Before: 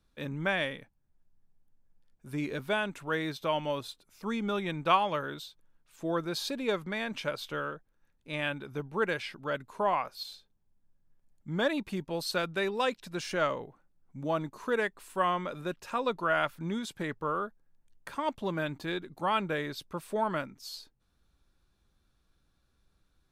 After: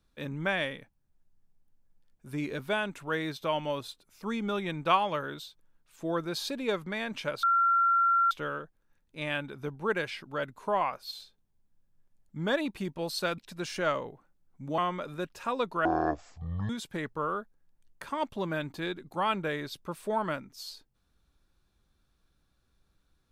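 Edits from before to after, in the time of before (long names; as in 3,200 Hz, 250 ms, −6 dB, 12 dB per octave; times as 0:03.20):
0:07.43: insert tone 1,370 Hz −21 dBFS 0.88 s
0:12.50–0:12.93: remove
0:14.33–0:15.25: remove
0:16.32–0:16.75: play speed 51%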